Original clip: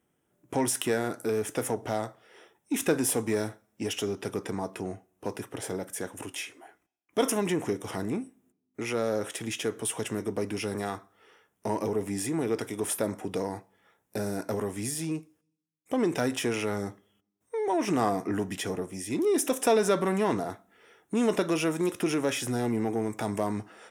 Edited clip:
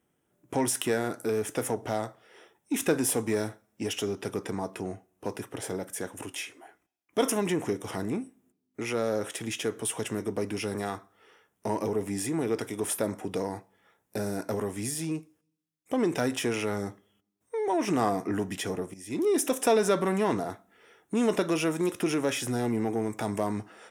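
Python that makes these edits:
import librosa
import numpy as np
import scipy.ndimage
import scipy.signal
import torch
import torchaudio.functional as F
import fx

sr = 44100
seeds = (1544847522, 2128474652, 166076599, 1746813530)

y = fx.edit(x, sr, fx.fade_in_from(start_s=18.94, length_s=0.29, floor_db=-15.0), tone=tone)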